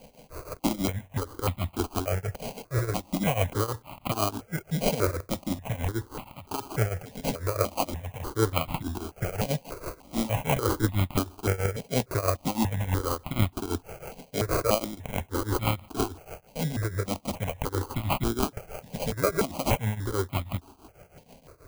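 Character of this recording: a quantiser's noise floor 10-bit, dither triangular; tremolo triangle 6.2 Hz, depth 90%; aliases and images of a low sample rate 1.8 kHz, jitter 0%; notches that jump at a steady rate 3.4 Hz 340–1600 Hz

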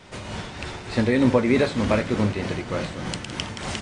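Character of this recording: tremolo triangle 3.3 Hz, depth 55%; MP2

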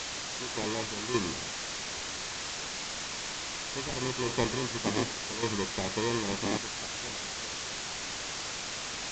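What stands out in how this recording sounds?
aliases and images of a low sample rate 1.4 kHz, jitter 0%; random-step tremolo, depth 90%; a quantiser's noise floor 6-bit, dither triangular; µ-law

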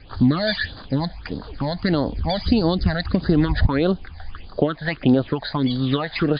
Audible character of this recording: phasing stages 8, 1.6 Hz, lowest notch 340–2400 Hz; MP3

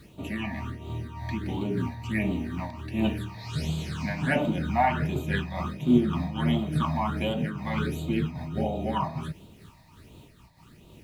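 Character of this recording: phasing stages 8, 1.4 Hz, lowest notch 390–1700 Hz; a quantiser's noise floor 10-bit, dither none; random flutter of the level

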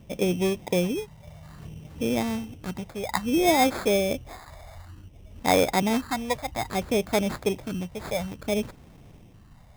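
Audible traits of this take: phasing stages 4, 0.59 Hz, lowest notch 310–4100 Hz; aliases and images of a low sample rate 2.9 kHz, jitter 0%

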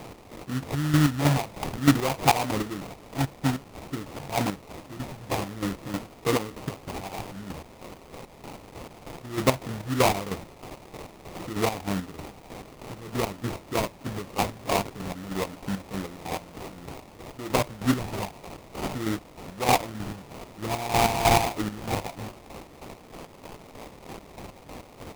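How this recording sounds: a quantiser's noise floor 8-bit, dither triangular; chopped level 3.2 Hz, depth 60%, duty 40%; phasing stages 4, 0.53 Hz, lowest notch 360–3500 Hz; aliases and images of a low sample rate 1.6 kHz, jitter 20%

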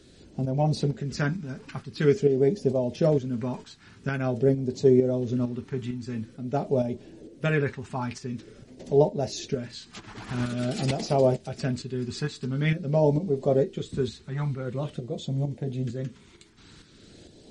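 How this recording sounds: tremolo saw up 2.2 Hz, depth 55%; phasing stages 2, 0.47 Hz, lowest notch 540–1300 Hz; MP3

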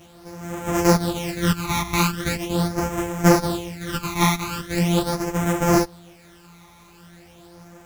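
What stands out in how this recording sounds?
a buzz of ramps at a fixed pitch in blocks of 256 samples; phasing stages 12, 0.41 Hz, lowest notch 500–4300 Hz; a quantiser's noise floor 10-bit, dither none; a shimmering, thickened sound

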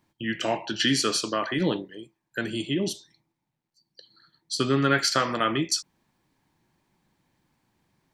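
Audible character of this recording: noise floor -82 dBFS; spectral tilt -3.5 dB/octave

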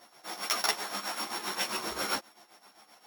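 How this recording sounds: a buzz of ramps at a fixed pitch in blocks of 8 samples; tremolo triangle 7.6 Hz, depth 80%; a shimmering, thickened sound

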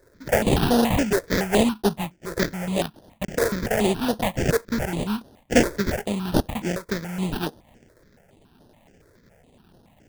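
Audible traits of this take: aliases and images of a low sample rate 1.2 kHz, jitter 20%; notches that jump at a steady rate 7.1 Hz 780–7500 Hz

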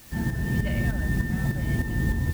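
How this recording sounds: a quantiser's noise floor 8-bit, dither triangular; tremolo saw up 3.3 Hz, depth 55%

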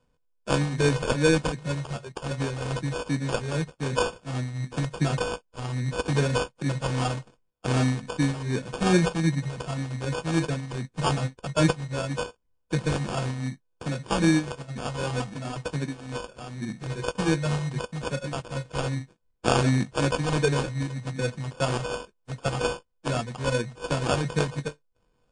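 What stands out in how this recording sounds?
a buzz of ramps at a fixed pitch in blocks of 8 samples; phasing stages 2, 2.6 Hz, lowest notch 380–2300 Hz; aliases and images of a low sample rate 2 kHz, jitter 0%; MP3

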